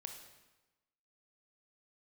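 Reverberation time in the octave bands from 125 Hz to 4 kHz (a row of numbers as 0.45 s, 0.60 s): 1.1 s, 1.1 s, 1.1 s, 1.1 s, 1.0 s, 0.95 s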